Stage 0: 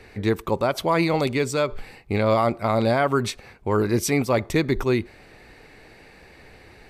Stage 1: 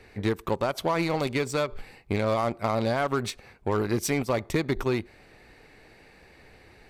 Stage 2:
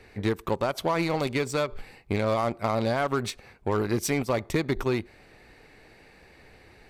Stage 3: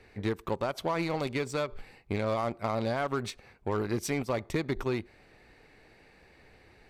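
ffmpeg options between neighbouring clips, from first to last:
ffmpeg -i in.wav -af "aeval=exprs='0.316*(cos(1*acos(clip(val(0)/0.316,-1,1)))-cos(1*PI/2))+0.02*(cos(7*acos(clip(val(0)/0.316,-1,1)))-cos(7*PI/2))':channel_layout=same,acompressor=threshold=-22dB:ratio=4" out.wav
ffmpeg -i in.wav -af anull out.wav
ffmpeg -i in.wav -af "highshelf=frequency=9200:gain=-5.5,volume=-4.5dB" out.wav

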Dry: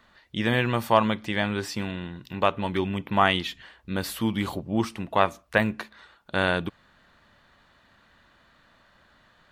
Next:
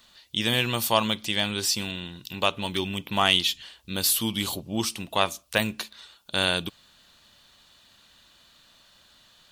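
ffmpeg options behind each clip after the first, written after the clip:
ffmpeg -i in.wav -af "aexciter=amount=3.8:drive=8:freq=2700,volume=-3.5dB" out.wav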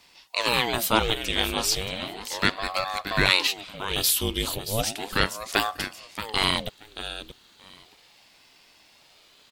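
ffmpeg -i in.wav -af "aecho=1:1:627|1254:0.282|0.0451,aeval=exprs='val(0)*sin(2*PI*540*n/s+540*0.75/0.35*sin(2*PI*0.35*n/s))':channel_layout=same,volume=3.5dB" out.wav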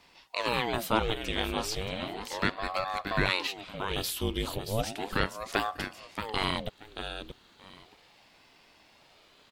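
ffmpeg -i in.wav -filter_complex "[0:a]asplit=2[link_01][link_02];[link_02]acompressor=threshold=-30dB:ratio=6,volume=2.5dB[link_03];[link_01][link_03]amix=inputs=2:normalize=0,highshelf=frequency=3000:gain=-11,volume=-6dB" out.wav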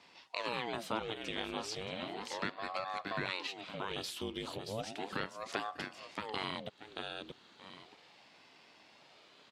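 ffmpeg -i in.wav -af "acompressor=threshold=-38dB:ratio=2,highpass=140,lowpass=7400,volume=-1dB" out.wav

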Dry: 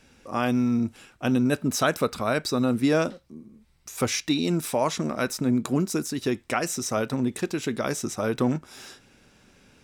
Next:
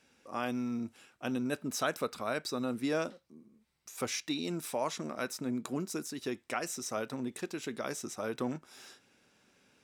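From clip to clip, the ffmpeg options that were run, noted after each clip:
ffmpeg -i in.wav -af "highpass=frequency=260:poles=1,volume=-8.5dB" out.wav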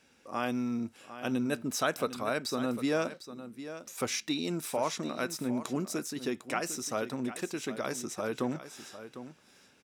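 ffmpeg -i in.wav -af "aecho=1:1:752:0.237,volume=2.5dB" out.wav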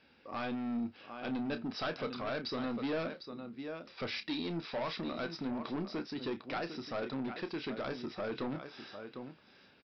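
ffmpeg -i in.wav -filter_complex "[0:a]aresample=11025,asoftclip=type=tanh:threshold=-32dB,aresample=44100,asplit=2[link_01][link_02];[link_02]adelay=30,volume=-11dB[link_03];[link_01][link_03]amix=inputs=2:normalize=0" out.wav

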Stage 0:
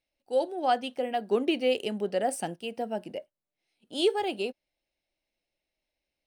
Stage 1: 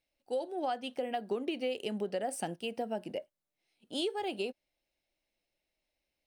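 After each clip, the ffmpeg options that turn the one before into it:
ffmpeg -i in.wav -af "acompressor=threshold=-31dB:ratio=6" out.wav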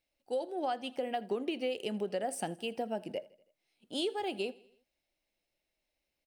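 ffmpeg -i in.wav -af "aecho=1:1:81|162|243|324:0.0794|0.0445|0.0249|0.0139" out.wav

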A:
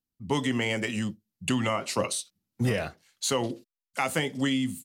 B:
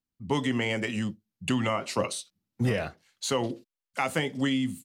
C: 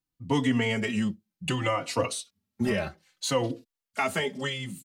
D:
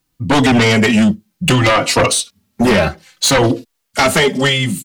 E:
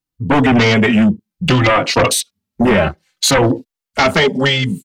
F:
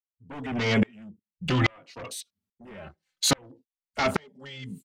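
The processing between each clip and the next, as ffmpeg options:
ffmpeg -i in.wav -af "highshelf=frequency=5900:gain=-7" out.wav
ffmpeg -i in.wav -filter_complex "[0:a]asplit=2[link_01][link_02];[link_02]adelay=3.5,afreqshift=-0.62[link_03];[link_01][link_03]amix=inputs=2:normalize=1,volume=4dB" out.wav
ffmpeg -i in.wav -af "aeval=exprs='0.251*sin(PI/2*3.55*val(0)/0.251)':channel_layout=same,volume=4.5dB" out.wav
ffmpeg -i in.wav -af "afwtdn=0.0794" out.wav
ffmpeg -i in.wav -af "aeval=exprs='val(0)*pow(10,-36*if(lt(mod(-1.2*n/s,1),2*abs(-1.2)/1000),1-mod(-1.2*n/s,1)/(2*abs(-1.2)/1000),(mod(-1.2*n/s,1)-2*abs(-1.2)/1000)/(1-2*abs(-1.2)/1000))/20)':channel_layout=same,volume=-6.5dB" out.wav

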